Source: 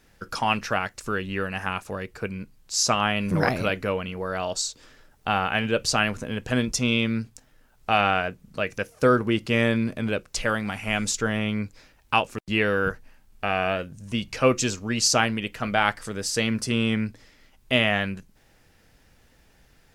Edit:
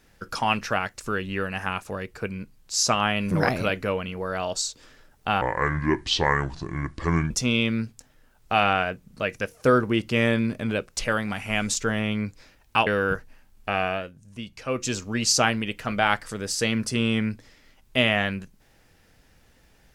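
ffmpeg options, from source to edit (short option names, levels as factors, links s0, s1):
-filter_complex "[0:a]asplit=6[s0][s1][s2][s3][s4][s5];[s0]atrim=end=5.414[s6];[s1]atrim=start=5.41:end=6.68,asetpts=PTS-STARTPTS,asetrate=29547,aresample=44100[s7];[s2]atrim=start=6.676:end=12.242[s8];[s3]atrim=start=12.618:end=13.87,asetpts=PTS-STARTPTS,afade=t=out:st=0.932:d=0.32:silence=0.354813[s9];[s4]atrim=start=13.87:end=14.46,asetpts=PTS-STARTPTS,volume=0.355[s10];[s5]atrim=start=14.46,asetpts=PTS-STARTPTS,afade=t=in:d=0.32:silence=0.354813[s11];[s6][s7]acrossfade=d=0.004:c1=hsin:c2=hsin[s12];[s12][s8]acrossfade=d=0.004:c1=hsin:c2=hsin[s13];[s9][s10][s11]concat=n=3:v=0:a=1[s14];[s13][s14]acrossfade=d=0.004:c1=hsin:c2=hsin"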